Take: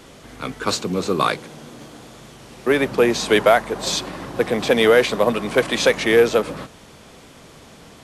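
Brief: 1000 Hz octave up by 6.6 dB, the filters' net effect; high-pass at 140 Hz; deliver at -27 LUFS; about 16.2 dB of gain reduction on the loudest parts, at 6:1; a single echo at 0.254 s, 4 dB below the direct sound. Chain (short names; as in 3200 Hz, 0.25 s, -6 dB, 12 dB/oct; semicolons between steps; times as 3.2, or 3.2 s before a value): HPF 140 Hz; bell 1000 Hz +9 dB; compressor 6:1, threshold -25 dBFS; echo 0.254 s -4 dB; gain +1.5 dB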